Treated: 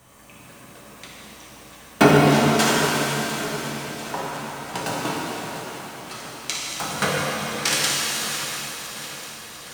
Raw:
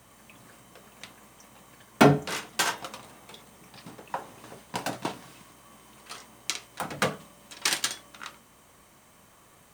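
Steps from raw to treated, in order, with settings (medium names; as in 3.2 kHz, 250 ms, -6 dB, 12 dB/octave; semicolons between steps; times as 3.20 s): backward echo that repeats 348 ms, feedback 78%, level -13 dB; pitch-shifted reverb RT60 3.1 s, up +7 st, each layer -8 dB, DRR -4.5 dB; trim +1.5 dB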